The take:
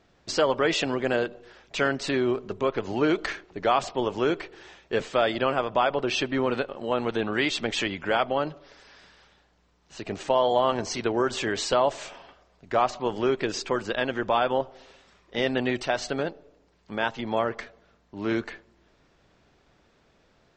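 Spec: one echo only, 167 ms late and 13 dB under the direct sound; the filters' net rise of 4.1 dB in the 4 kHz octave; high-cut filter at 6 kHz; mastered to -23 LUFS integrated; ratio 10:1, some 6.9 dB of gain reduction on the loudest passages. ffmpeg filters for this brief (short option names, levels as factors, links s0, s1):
-af "lowpass=6000,equalizer=f=4000:t=o:g=6,acompressor=threshold=0.0631:ratio=10,aecho=1:1:167:0.224,volume=2.24"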